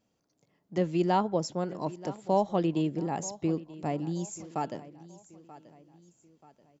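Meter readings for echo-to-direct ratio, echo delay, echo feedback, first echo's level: −17.0 dB, 933 ms, 42%, −18.0 dB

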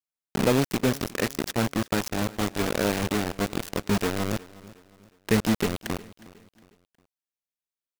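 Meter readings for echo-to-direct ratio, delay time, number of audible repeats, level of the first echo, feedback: −19.5 dB, 362 ms, 2, −20.0 dB, 39%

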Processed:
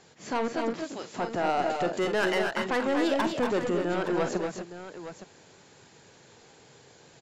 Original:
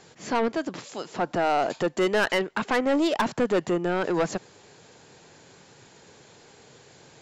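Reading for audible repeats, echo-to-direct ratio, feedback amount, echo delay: 3, −2.5 dB, repeats not evenly spaced, 45 ms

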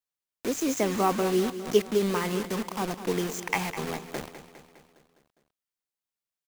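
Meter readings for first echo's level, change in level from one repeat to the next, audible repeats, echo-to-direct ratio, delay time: −12.5 dB, −4.5 dB, 5, −10.5 dB, 204 ms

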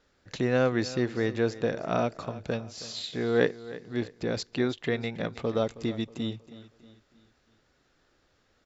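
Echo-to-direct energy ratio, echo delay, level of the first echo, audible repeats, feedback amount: −15.5 dB, 318 ms, −16.5 dB, 3, 44%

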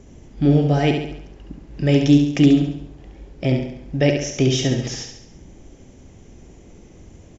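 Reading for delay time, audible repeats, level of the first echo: 69 ms, 5, −5.5 dB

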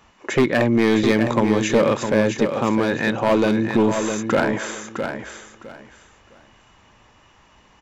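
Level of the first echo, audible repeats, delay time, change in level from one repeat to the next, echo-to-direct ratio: −7.0 dB, 3, 659 ms, −13.0 dB, −7.0 dB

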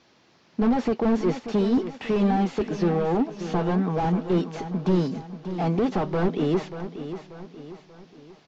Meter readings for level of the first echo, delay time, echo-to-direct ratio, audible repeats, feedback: −11.0 dB, 586 ms, −10.0 dB, 4, 44%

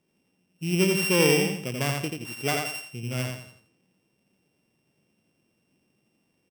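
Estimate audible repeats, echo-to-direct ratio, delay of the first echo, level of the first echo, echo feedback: 4, −3.0 dB, 86 ms, −3.5 dB, 34%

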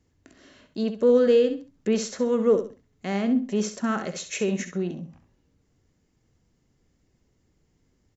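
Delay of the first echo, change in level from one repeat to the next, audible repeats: 66 ms, −12.0 dB, 3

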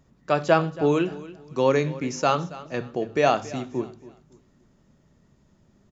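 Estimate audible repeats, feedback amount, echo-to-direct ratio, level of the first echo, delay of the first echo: 2, 30%, −17.5 dB, −18.0 dB, 278 ms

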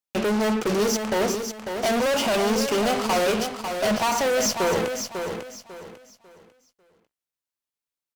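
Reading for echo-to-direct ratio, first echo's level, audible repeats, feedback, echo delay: −6.5 dB, −7.0 dB, 3, 29%, 547 ms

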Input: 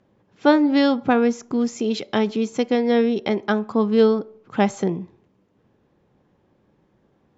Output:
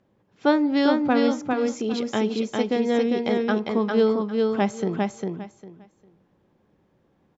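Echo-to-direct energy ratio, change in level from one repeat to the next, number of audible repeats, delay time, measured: −3.0 dB, −14.0 dB, 3, 402 ms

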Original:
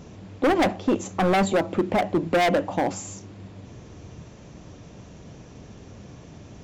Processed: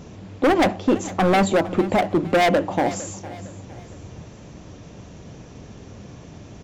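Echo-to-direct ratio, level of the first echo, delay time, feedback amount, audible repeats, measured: −16.5 dB, −17.0 dB, 458 ms, 40%, 3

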